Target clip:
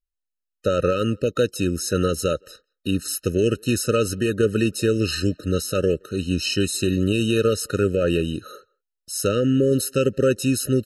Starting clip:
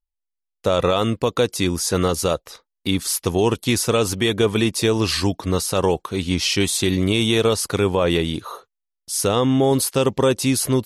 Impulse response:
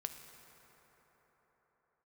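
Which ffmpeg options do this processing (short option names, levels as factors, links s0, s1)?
-filter_complex "[0:a]asplit=2[s0][s1];[s1]adelay=170,highpass=300,lowpass=3400,asoftclip=type=hard:threshold=0.178,volume=0.0355[s2];[s0][s2]amix=inputs=2:normalize=0,aeval=exprs='0.501*(cos(1*acos(clip(val(0)/0.501,-1,1)))-cos(1*PI/2))+0.0282*(cos(3*acos(clip(val(0)/0.501,-1,1)))-cos(3*PI/2))':c=same,afftfilt=real='re*eq(mod(floor(b*sr/1024/620),2),0)':imag='im*eq(mod(floor(b*sr/1024/620),2),0)':win_size=1024:overlap=0.75"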